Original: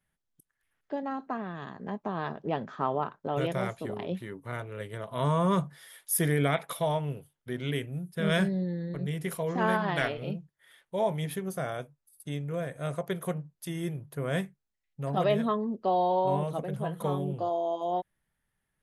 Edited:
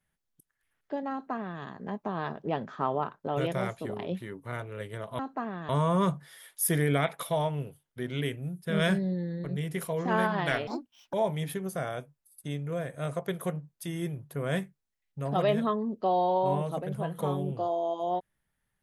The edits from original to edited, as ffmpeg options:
-filter_complex "[0:a]asplit=5[s0][s1][s2][s3][s4];[s0]atrim=end=5.192[s5];[s1]atrim=start=1.118:end=1.622[s6];[s2]atrim=start=5.188:end=10.174[s7];[s3]atrim=start=10.17:end=10.95,asetpts=PTS-STARTPTS,asetrate=74088,aresample=44100[s8];[s4]atrim=start=10.946[s9];[s5][s6]acrossfade=d=0.004:c1=hsin:c2=hsin[s10];[s10][s7]acrossfade=d=0.004:c1=hsin:c2=hsin[s11];[s11][s8]acrossfade=d=0.004:c1=hsin:c2=hsin[s12];[s12][s9]acrossfade=d=0.004:c1=hsin:c2=hsin"

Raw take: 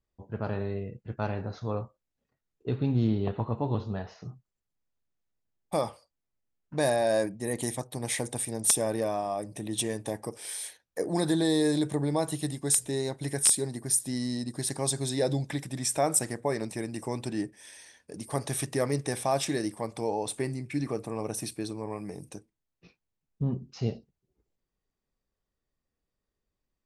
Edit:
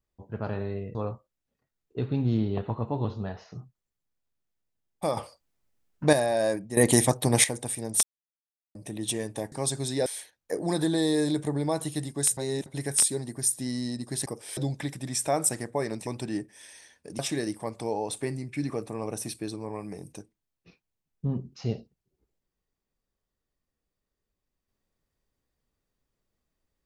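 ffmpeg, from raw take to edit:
-filter_complex "[0:a]asplit=16[s0][s1][s2][s3][s4][s5][s6][s7][s8][s9][s10][s11][s12][s13][s14][s15];[s0]atrim=end=0.952[s16];[s1]atrim=start=1.648:end=5.872[s17];[s2]atrim=start=5.868:end=6.832,asetpts=PTS-STARTPTS,volume=2.66[s18];[s3]atrim=start=6.828:end=7.472[s19];[s4]atrim=start=7.468:end=8.142,asetpts=PTS-STARTPTS,volume=3.76[s20];[s5]atrim=start=8.138:end=8.73,asetpts=PTS-STARTPTS,afade=t=out:st=0.588:d=0.004:c=hsin[s21];[s6]atrim=start=8.73:end=9.45,asetpts=PTS-STARTPTS,volume=0[s22];[s7]atrim=start=9.45:end=10.222,asetpts=PTS-STARTPTS,afade=t=in:d=0.004:c=hsin[s23];[s8]atrim=start=14.728:end=15.272[s24];[s9]atrim=start=10.528:end=12.842[s25];[s10]atrim=start=12.838:end=13.132,asetpts=PTS-STARTPTS,areverse[s26];[s11]atrim=start=13.128:end=14.732[s27];[s12]atrim=start=10.218:end=10.532[s28];[s13]atrim=start=15.268:end=16.772[s29];[s14]atrim=start=17.108:end=18.232[s30];[s15]atrim=start=19.358[s31];[s16][s17]acrossfade=d=0.004:c1=hsin:c2=hsin[s32];[s32][s18]acrossfade=d=0.004:c1=hsin:c2=hsin[s33];[s33][s19]acrossfade=d=0.004:c1=hsin:c2=hsin[s34];[s34][s20]acrossfade=d=0.004:c1=hsin:c2=hsin[s35];[s21][s22][s23]concat=n=3:v=0:a=1[s36];[s35][s36]acrossfade=d=0.004:c1=hsin:c2=hsin[s37];[s37][s24]acrossfade=d=0.004:c1=hsin:c2=hsin[s38];[s38][s25]acrossfade=d=0.004:c1=hsin:c2=hsin[s39];[s39][s26]acrossfade=d=0.004:c1=hsin:c2=hsin[s40];[s40][s27]acrossfade=d=0.004:c1=hsin:c2=hsin[s41];[s41][s28]acrossfade=d=0.004:c1=hsin:c2=hsin[s42];[s42][s29]acrossfade=d=0.004:c1=hsin:c2=hsin[s43];[s43][s30]acrossfade=d=0.004:c1=hsin:c2=hsin[s44];[s44][s31]acrossfade=d=0.004:c1=hsin:c2=hsin"

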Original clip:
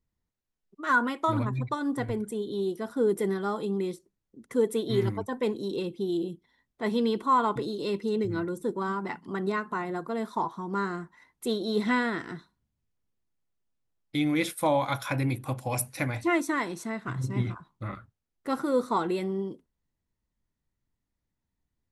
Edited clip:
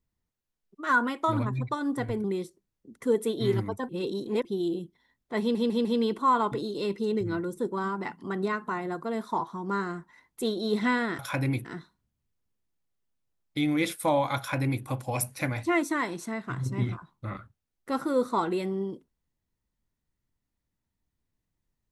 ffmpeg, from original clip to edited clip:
-filter_complex "[0:a]asplit=9[s0][s1][s2][s3][s4][s5][s6][s7][s8];[s0]atrim=end=2.242[s9];[s1]atrim=start=3.728:end=5.382[s10];[s2]atrim=start=5.378:end=5.942,asetpts=PTS-STARTPTS,areverse[s11];[s3]atrim=start=5.938:end=7.042[s12];[s4]atrim=start=6.888:end=7.042[s13];[s5]atrim=start=6.888:end=7.042[s14];[s6]atrim=start=6.888:end=12.232[s15];[s7]atrim=start=14.958:end=15.422[s16];[s8]atrim=start=12.228[s17];[s9][s10]acrossfade=d=0.004:c1=hsin:c2=hsin[s18];[s18][s11]acrossfade=d=0.004:c1=hsin:c2=hsin[s19];[s19][s12]acrossfade=d=0.004:c1=hsin:c2=hsin[s20];[s20][s13]acrossfade=d=0.004:c1=hsin:c2=hsin[s21];[s21][s14]acrossfade=d=0.004:c1=hsin:c2=hsin[s22];[s22][s15]acrossfade=d=0.004:c1=hsin:c2=hsin[s23];[s23][s16]acrossfade=d=0.004:c1=hsin:c2=hsin[s24];[s24][s17]acrossfade=d=0.004:c1=hsin:c2=hsin"

